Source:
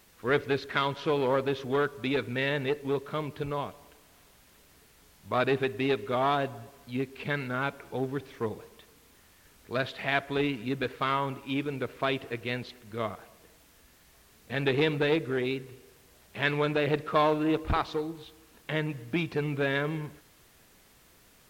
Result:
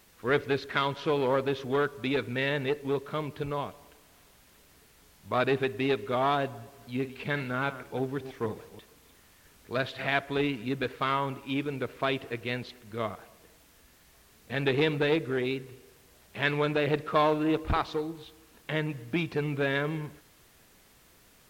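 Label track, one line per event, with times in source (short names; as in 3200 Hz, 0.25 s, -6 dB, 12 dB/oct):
6.550000	10.170000	reverse delay 0.16 s, level -12 dB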